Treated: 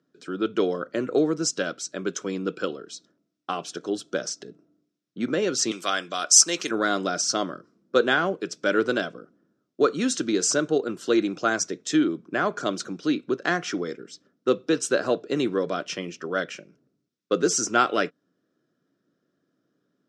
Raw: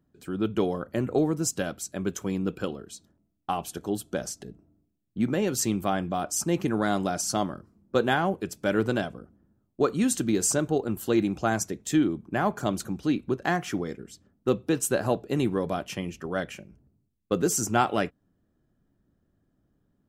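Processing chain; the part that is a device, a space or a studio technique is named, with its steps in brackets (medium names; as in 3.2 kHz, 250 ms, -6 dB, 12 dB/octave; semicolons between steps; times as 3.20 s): 5.71–6.71 s: tilt EQ +4.5 dB/octave; television speaker (cabinet simulation 180–7200 Hz, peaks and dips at 210 Hz -8 dB, 480 Hz +3 dB, 840 Hz -10 dB, 1.4 kHz +6 dB, 3.7 kHz +4 dB, 5.4 kHz +7 dB); trim +2.5 dB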